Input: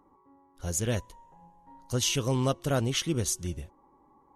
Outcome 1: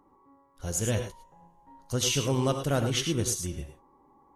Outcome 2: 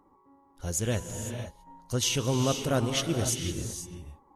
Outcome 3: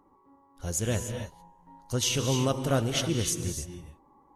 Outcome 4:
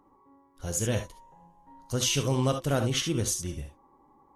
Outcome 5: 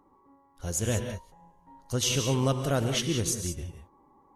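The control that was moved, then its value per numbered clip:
non-linear reverb, gate: 130, 530, 320, 90, 210 ms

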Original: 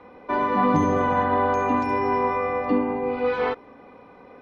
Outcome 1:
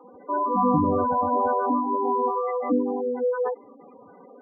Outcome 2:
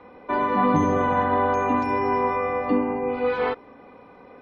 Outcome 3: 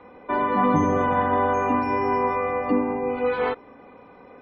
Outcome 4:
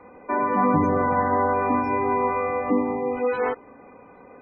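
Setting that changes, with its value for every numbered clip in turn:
spectral gate, under each frame's peak: -10, -50, -40, -25 dB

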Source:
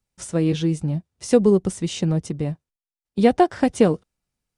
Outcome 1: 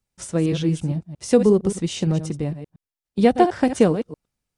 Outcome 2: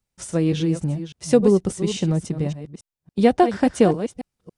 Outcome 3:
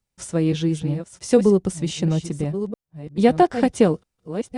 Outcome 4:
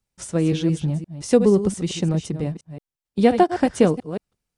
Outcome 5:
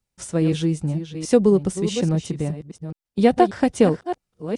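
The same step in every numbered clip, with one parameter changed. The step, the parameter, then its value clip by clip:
reverse delay, time: 0.115, 0.281, 0.685, 0.174, 0.418 s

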